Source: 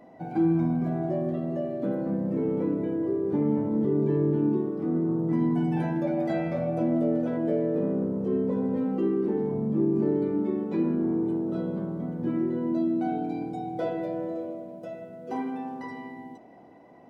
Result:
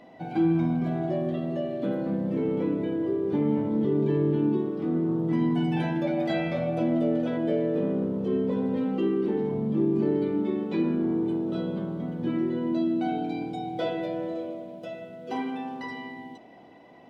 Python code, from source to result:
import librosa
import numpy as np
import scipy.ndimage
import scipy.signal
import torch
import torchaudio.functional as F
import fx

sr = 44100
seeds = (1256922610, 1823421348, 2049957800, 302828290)

y = fx.peak_eq(x, sr, hz=3300.0, db=13.0, octaves=1.2)